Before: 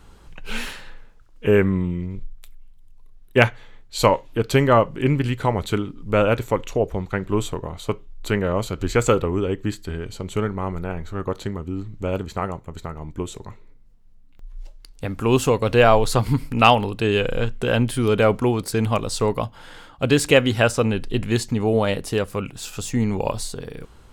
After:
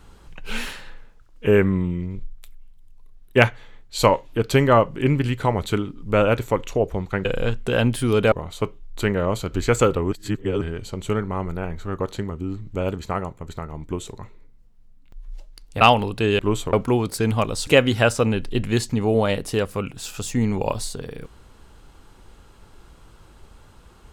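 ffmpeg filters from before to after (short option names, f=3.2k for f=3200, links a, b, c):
-filter_complex "[0:a]asplit=9[a][b][c][d][e][f][g][h][i];[a]atrim=end=7.252[j];[b]atrim=start=17.198:end=18.272[k];[c]atrim=start=7.588:end=9.392[l];[d]atrim=start=9.388:end=9.882,asetpts=PTS-STARTPTS,areverse[m];[e]atrim=start=9.878:end=15.082[n];[f]atrim=start=16.618:end=17.202[o];[g]atrim=start=7.248:end=7.592[p];[h]atrim=start=18.268:end=19.212[q];[i]atrim=start=20.258[r];[j][k]acrossfade=d=0.004:c1=hsin:c2=hsin[s];[s][l]acrossfade=d=0.004:c1=hsin:c2=hsin[t];[t][m]acrossfade=d=0.004:c1=hsin:c2=hsin[u];[u][n]acrossfade=d=0.004:c1=hsin:c2=hsin[v];[v][o]acrossfade=d=0.004:c1=hsin:c2=hsin[w];[w][p]acrossfade=d=0.004:c1=hsin:c2=hsin[x];[x][q]acrossfade=d=0.004:c1=hsin:c2=hsin[y];[y][r]acrossfade=d=0.004:c1=hsin:c2=hsin"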